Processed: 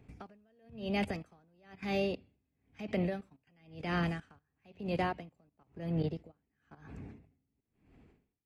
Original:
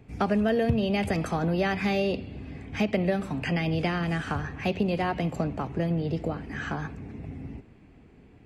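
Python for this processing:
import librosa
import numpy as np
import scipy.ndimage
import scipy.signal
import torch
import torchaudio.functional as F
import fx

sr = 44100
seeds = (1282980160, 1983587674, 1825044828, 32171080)

y = fx.level_steps(x, sr, step_db=15)
y = y * 10.0 ** (-38 * (0.5 - 0.5 * np.cos(2.0 * np.pi * 1.0 * np.arange(len(y)) / sr)) / 20.0)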